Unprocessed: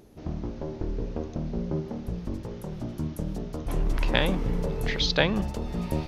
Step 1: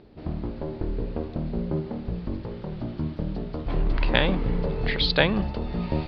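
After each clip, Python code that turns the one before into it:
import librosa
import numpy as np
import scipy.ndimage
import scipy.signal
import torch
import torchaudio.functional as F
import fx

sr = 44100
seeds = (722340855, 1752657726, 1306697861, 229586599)

y = scipy.signal.sosfilt(scipy.signal.ellip(4, 1.0, 40, 4600.0, 'lowpass', fs=sr, output='sos'), x)
y = F.gain(torch.from_numpy(y), 3.0).numpy()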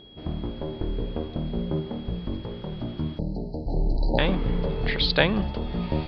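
y = x + 10.0 ** (-49.0 / 20.0) * np.sin(2.0 * np.pi * 3300.0 * np.arange(len(x)) / sr)
y = fx.spec_erase(y, sr, start_s=3.19, length_s=1.0, low_hz=940.0, high_hz=3900.0)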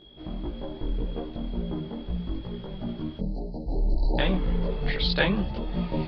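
y = fx.chorus_voices(x, sr, voices=6, hz=0.72, base_ms=19, depth_ms=3.6, mix_pct=55)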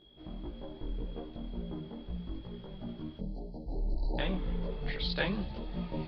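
y = fx.echo_wet_highpass(x, sr, ms=77, feedback_pct=76, hz=3200.0, wet_db=-17.5)
y = F.gain(torch.from_numpy(y), -8.5).numpy()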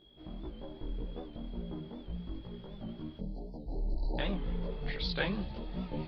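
y = fx.record_warp(x, sr, rpm=78.0, depth_cents=100.0)
y = F.gain(torch.from_numpy(y), -1.0).numpy()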